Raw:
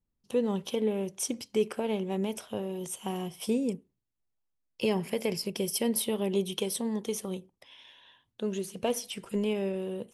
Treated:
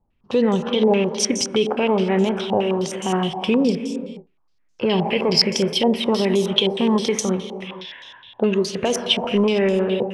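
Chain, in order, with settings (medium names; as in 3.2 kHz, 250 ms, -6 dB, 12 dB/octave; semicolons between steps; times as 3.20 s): gated-style reverb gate 500 ms flat, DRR 9 dB; loudness maximiser +22 dB; step-sequenced low-pass 9.6 Hz 820–6400 Hz; trim -9 dB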